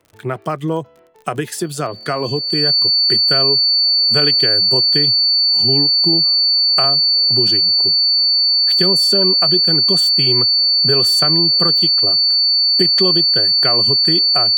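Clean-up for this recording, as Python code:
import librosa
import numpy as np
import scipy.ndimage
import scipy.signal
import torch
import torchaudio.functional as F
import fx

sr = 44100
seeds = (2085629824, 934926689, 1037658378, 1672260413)

y = fx.fix_declick_ar(x, sr, threshold=6.5)
y = fx.notch(y, sr, hz=4500.0, q=30.0)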